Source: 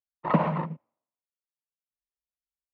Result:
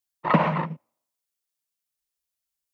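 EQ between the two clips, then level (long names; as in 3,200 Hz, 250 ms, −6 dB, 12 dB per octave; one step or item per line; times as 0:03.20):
high-shelf EQ 3,100 Hz +10.5 dB
dynamic equaliser 1,900 Hz, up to +4 dB, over −39 dBFS, Q 0.92
+2.0 dB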